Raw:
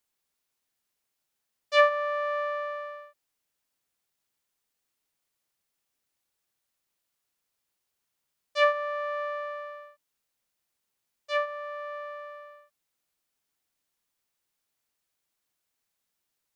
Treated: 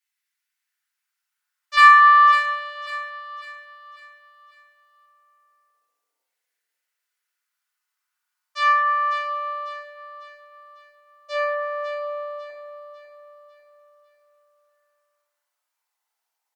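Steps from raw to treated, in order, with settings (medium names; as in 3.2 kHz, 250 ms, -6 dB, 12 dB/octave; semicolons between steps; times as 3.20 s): LFO high-pass saw down 0.16 Hz 470–1900 Hz; 1.77–2.32 s: ten-band graphic EQ 500 Hz -12 dB, 1 kHz +9 dB, 2 kHz +4 dB, 4 kHz +10 dB; in parallel at -7 dB: saturation -12.5 dBFS, distortion -8 dB; on the sum: Chebyshev shaper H 8 -34 dB, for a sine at 1.5 dBFS; on a send: feedback delay 548 ms, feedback 42%, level -9.5 dB; on the sum: FDN reverb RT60 1.1 s, low-frequency decay 0.95×, high-frequency decay 0.45×, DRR -7 dB; trim -10 dB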